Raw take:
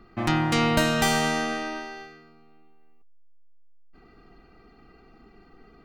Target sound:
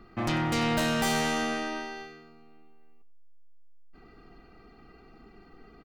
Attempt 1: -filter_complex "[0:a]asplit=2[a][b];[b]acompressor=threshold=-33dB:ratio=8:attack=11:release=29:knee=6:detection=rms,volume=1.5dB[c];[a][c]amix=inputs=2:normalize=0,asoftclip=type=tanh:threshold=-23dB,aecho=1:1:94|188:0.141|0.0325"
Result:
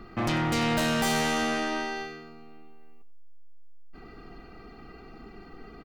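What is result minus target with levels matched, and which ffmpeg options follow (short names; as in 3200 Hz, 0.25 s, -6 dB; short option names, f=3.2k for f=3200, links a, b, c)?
compressor: peak gain reduction +14.5 dB
-af "asoftclip=type=tanh:threshold=-23dB,aecho=1:1:94|188:0.141|0.0325"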